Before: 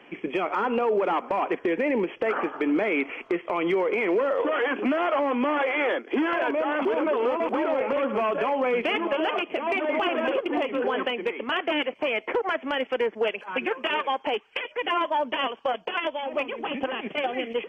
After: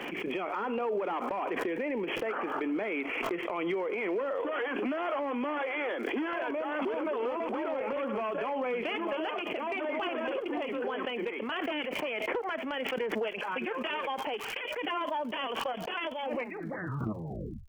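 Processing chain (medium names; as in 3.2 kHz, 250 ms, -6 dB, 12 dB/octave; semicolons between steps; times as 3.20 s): tape stop on the ending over 1.43 s; crackle 140 per s -50 dBFS; swell ahead of each attack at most 22 dB/s; trim -8.5 dB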